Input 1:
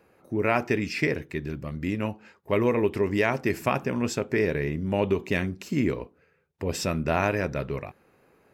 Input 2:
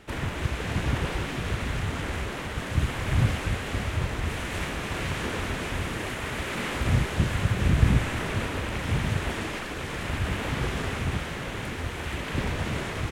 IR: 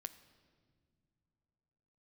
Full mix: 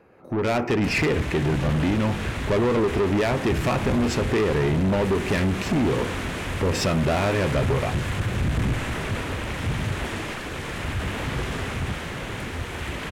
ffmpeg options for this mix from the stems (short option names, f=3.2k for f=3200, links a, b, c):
-filter_complex "[0:a]lowpass=f=2k:p=1,acompressor=threshold=-29dB:ratio=4,volume=3dB,asplit=2[a][b];[b]volume=-2.5dB[c];[1:a]adelay=750,volume=-12.5dB,asplit=2[d][e];[e]volume=-0.5dB[f];[2:a]atrim=start_sample=2205[g];[c][f]amix=inputs=2:normalize=0[h];[h][g]afir=irnorm=-1:irlink=0[i];[a][d][i]amix=inputs=3:normalize=0,asoftclip=type=tanh:threshold=-28.5dB,dynaudnorm=f=100:g=7:m=10.5dB"